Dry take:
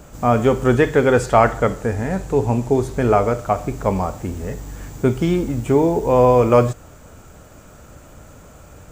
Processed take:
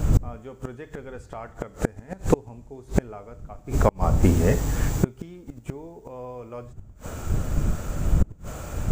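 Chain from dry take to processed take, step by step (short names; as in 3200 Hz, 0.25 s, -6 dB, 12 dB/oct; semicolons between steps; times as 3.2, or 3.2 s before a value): wind noise 84 Hz -23 dBFS; 3.59–4.23 compressor 8:1, threshold -22 dBFS, peak gain reduction 10.5 dB; flipped gate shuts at -13 dBFS, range -32 dB; gain +7.5 dB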